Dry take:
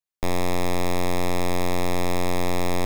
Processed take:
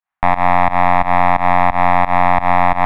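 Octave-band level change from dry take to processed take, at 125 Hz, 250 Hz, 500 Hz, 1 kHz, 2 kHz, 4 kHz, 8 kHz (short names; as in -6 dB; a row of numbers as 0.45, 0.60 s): +5.5 dB, +4.0 dB, +7.0 dB, +18.5 dB, +13.5 dB, -2.0 dB, under -15 dB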